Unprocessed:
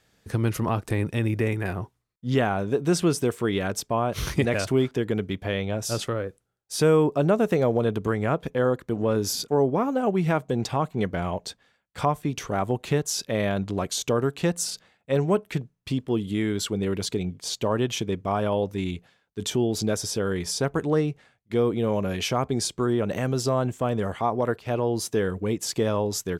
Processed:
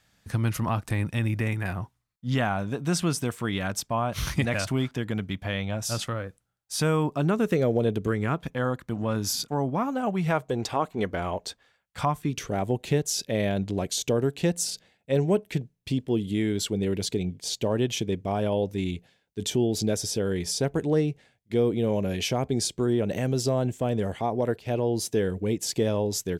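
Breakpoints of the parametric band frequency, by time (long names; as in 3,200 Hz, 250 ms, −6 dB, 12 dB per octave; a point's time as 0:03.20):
parametric band −11 dB 0.74 octaves
0:07.07 410 Hz
0:07.89 1,300 Hz
0:08.47 420 Hz
0:10.00 420 Hz
0:10.71 140 Hz
0:11.49 140 Hz
0:12.57 1,200 Hz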